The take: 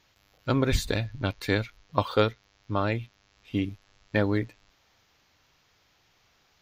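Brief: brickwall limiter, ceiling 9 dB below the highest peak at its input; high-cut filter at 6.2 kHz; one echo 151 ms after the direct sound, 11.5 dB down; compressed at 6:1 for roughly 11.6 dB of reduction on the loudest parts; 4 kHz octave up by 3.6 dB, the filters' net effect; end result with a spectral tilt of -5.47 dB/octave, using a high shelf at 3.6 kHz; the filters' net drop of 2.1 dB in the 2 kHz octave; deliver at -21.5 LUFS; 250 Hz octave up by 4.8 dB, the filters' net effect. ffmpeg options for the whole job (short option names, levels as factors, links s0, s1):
-af "lowpass=6200,equalizer=f=250:t=o:g=6,equalizer=f=2000:t=o:g=-3.5,highshelf=f=3600:g=-4,equalizer=f=4000:t=o:g=8,acompressor=threshold=0.0355:ratio=6,alimiter=limit=0.0668:level=0:latency=1,aecho=1:1:151:0.266,volume=5.96"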